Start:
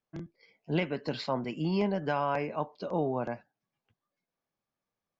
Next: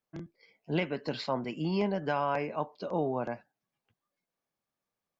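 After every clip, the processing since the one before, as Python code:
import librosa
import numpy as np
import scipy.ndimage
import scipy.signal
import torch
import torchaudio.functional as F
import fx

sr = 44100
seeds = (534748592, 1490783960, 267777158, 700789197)

y = fx.low_shelf(x, sr, hz=160.0, db=-3.5)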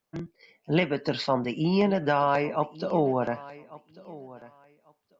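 y = fx.echo_feedback(x, sr, ms=1144, feedback_pct=20, wet_db=-19)
y = F.gain(torch.from_numpy(y), 6.5).numpy()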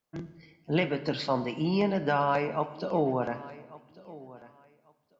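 y = fx.rev_fdn(x, sr, rt60_s=1.3, lf_ratio=1.3, hf_ratio=0.8, size_ms=65.0, drr_db=10.5)
y = F.gain(torch.from_numpy(y), -3.0).numpy()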